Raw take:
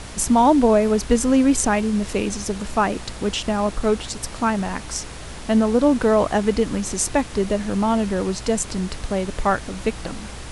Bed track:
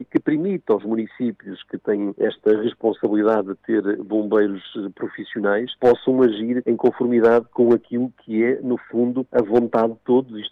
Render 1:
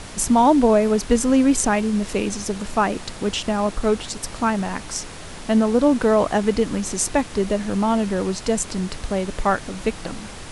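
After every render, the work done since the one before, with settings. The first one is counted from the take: de-hum 60 Hz, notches 2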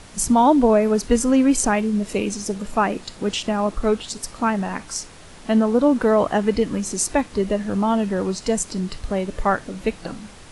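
noise print and reduce 7 dB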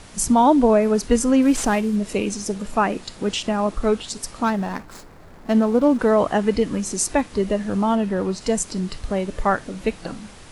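1.42–1.96 CVSD 64 kbps; 4.44–5.99 median filter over 15 samples; 7.95–8.41 bell 7200 Hz -5.5 dB 1.5 oct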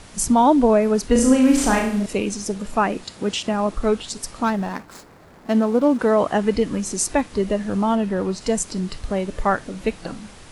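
1.12–2.06 flutter echo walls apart 6 m, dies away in 0.59 s; 3.04–3.54 HPF 67 Hz; 4.7–6.33 HPF 110 Hz 6 dB/oct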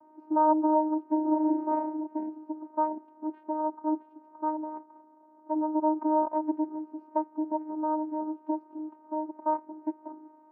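vocoder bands 8, saw 309 Hz; ladder low-pass 1000 Hz, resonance 70%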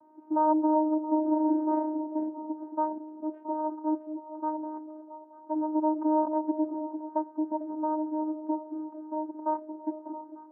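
air absorption 440 m; on a send: delay with a stepping band-pass 0.224 s, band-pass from 300 Hz, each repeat 0.7 oct, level -7.5 dB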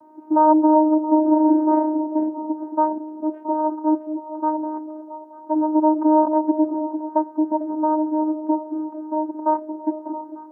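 gain +9.5 dB

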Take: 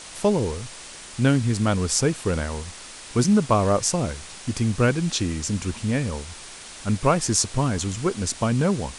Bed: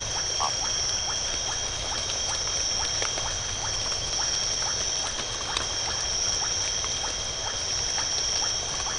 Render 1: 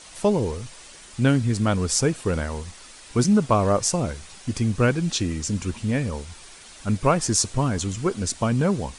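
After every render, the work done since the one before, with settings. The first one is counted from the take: denoiser 7 dB, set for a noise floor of -41 dBFS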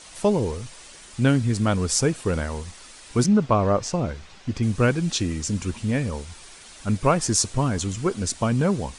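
3.26–4.63 air absorption 120 m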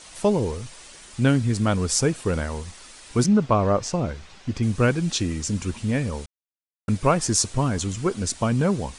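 6.26–6.88 mute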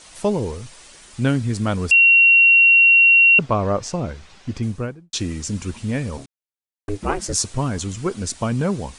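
1.91–3.39 bleep 2740 Hz -8.5 dBFS; 4.52–5.13 studio fade out; 6.17–7.33 ring modulator 200 Hz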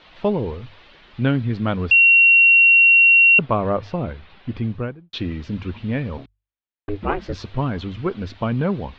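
steep low-pass 3800 Hz 36 dB/oct; notches 50/100 Hz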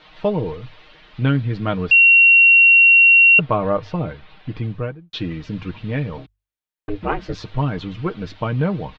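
bell 290 Hz -2 dB 0.45 oct; comb 6.5 ms, depth 54%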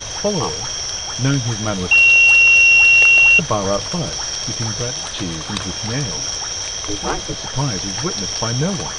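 add bed +2.5 dB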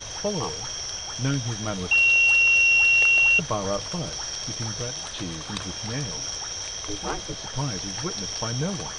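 gain -8 dB

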